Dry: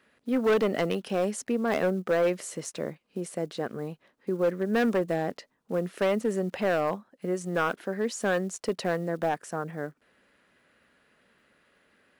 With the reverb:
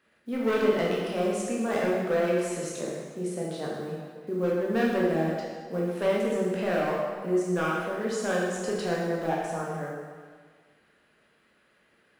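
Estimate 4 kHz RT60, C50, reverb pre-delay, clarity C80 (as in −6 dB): 1.5 s, −0.5 dB, 13 ms, 2.0 dB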